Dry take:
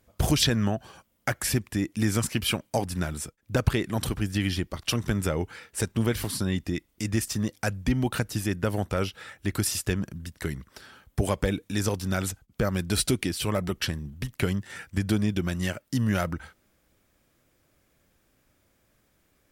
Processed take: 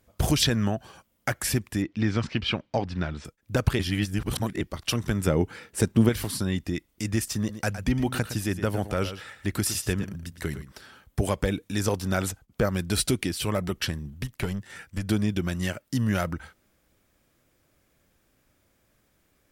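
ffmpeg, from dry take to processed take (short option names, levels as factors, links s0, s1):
-filter_complex "[0:a]asettb=1/sr,asplit=3[s0][s1][s2];[s0]atrim=end=1.824[s3];[s1]atrim=start=1.82:end=3.25,asetpts=PTS-STARTPTS,afade=t=in:d=0.004:c=qsin,afade=t=out:st=1.426:d=0.004:c=qsin,lowpass=f=4500:w=0.5412,lowpass=f=4500:w=1.3066[s4];[s2]atrim=start=3.246[s5];[s3][s4]acrossfade=d=0.004:c1=hsin:c2=qsin[s6];[s6][s5]acrossfade=d=0.004:c1=qsin:c2=hsin,asettb=1/sr,asplit=3[s7][s8][s9];[s7]atrim=end=5.274[s10];[s8]atrim=start=5.27:end=6.09,asetpts=PTS-STARTPTS,afade=t=in:d=0.004:c=qsin,afade=t=out:st=0.816:d=0.004:c=qsin,equalizer=f=230:t=o:w=2.5:g=7.5[s11];[s9]atrim=start=6.086[s12];[s10][s11]acrossfade=d=0.004:c1=hsin:c2=qsin[s13];[s13][s12]acrossfade=d=0.004:c1=qsin:c2=hsin,asettb=1/sr,asplit=3[s14][s15][s16];[s14]atrim=end=7.384[s17];[s15]atrim=start=7.38:end=10.72,asetpts=PTS-STARTPTS,afade=t=in:d=0.004:c=qsin,afade=t=out:st=3.336:d=0.004:c=qsin,aecho=1:1:113:0.266,atrim=end_sample=147294[s18];[s16]atrim=start=10.716[s19];[s17][s18]acrossfade=d=0.004:c1=hsin:c2=qsin[s20];[s20][s19]acrossfade=d=0.004:c1=qsin:c2=hsin,asettb=1/sr,asplit=3[s21][s22][s23];[s21]atrim=end=11.884[s24];[s22]atrim=start=11.88:end=12.66,asetpts=PTS-STARTPTS,afade=t=in:d=0.004:c=qsin,afade=t=out:st=0.776:d=0.004:c=qsin,equalizer=f=690:w=0.58:g=4[s25];[s23]atrim=start=12.656[s26];[s24][s25]acrossfade=d=0.004:c1=hsin:c2=qsin[s27];[s27][s26]acrossfade=d=0.004:c1=qsin:c2=hsin,asettb=1/sr,asplit=3[s28][s29][s30];[s28]atrim=end=14.274[s31];[s29]atrim=start=14.27:end=15.09,asetpts=PTS-STARTPTS,afade=t=in:d=0.004:c=qsin,afade=t=out:st=0.816:d=0.004:c=qsin,aeval=exprs='(tanh(7.08*val(0)+0.55)-tanh(0.55))/7.08':c=same[s32];[s30]atrim=start=15.086[s33];[s31][s32]acrossfade=d=0.004:c1=hsin:c2=qsin[s34];[s34][s33]acrossfade=d=0.004:c1=qsin:c2=hsin,asplit=3[s35][s36][s37];[s35]atrim=end=3.792[s38];[s36]atrim=start=3.788:end=4.612,asetpts=PTS-STARTPTS,areverse[s39];[s37]atrim=start=4.608[s40];[s38][s39]acrossfade=d=0.004:c1=hsin:c2=hsin[s41];[s41][s40]acrossfade=d=0.004:c1=hsin:c2=hsin"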